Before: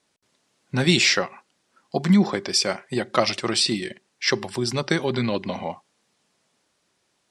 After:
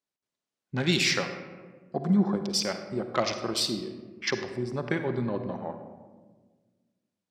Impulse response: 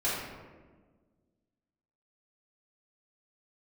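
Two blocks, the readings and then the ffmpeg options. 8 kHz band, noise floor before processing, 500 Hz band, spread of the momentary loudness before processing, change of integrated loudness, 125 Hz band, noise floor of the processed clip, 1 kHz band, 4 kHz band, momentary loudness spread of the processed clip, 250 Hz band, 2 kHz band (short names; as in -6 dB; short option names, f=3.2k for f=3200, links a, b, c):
-7.0 dB, -71 dBFS, -5.5 dB, 13 LU, -6.0 dB, -5.5 dB, under -85 dBFS, -6.0 dB, -7.0 dB, 14 LU, -5.5 dB, -6.5 dB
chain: -filter_complex "[0:a]afwtdn=0.0355,asplit=2[a][b];[1:a]atrim=start_sample=2205,adelay=49[c];[b][c]afir=irnorm=-1:irlink=0,volume=-16.5dB[d];[a][d]amix=inputs=2:normalize=0,volume=-6.5dB"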